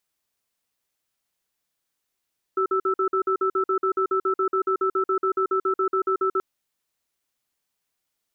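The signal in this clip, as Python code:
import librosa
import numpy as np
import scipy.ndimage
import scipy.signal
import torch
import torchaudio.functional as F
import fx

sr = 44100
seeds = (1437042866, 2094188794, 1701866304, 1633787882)

y = fx.cadence(sr, length_s=3.83, low_hz=381.0, high_hz=1320.0, on_s=0.09, off_s=0.05, level_db=-22.0)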